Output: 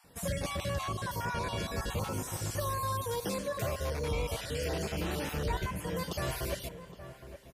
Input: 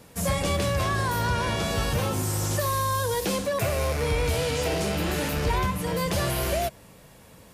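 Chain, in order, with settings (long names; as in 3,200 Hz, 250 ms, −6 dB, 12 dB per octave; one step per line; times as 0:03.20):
time-frequency cells dropped at random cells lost 29%
slap from a distant wall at 140 metres, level −12 dB
spring reverb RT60 2.5 s, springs 38 ms, chirp 40 ms, DRR 16 dB
level −7.5 dB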